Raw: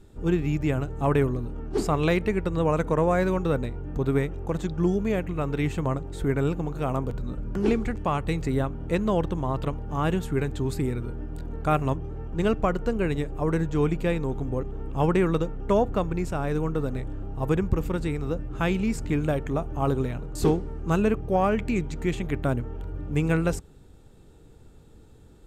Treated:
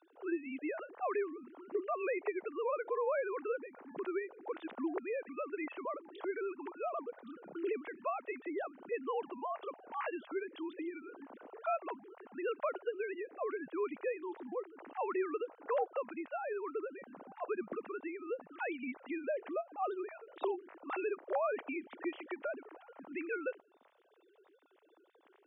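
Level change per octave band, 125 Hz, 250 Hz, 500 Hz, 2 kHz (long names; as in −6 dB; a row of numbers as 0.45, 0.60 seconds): below −40 dB, −16.5 dB, −10.0 dB, −9.0 dB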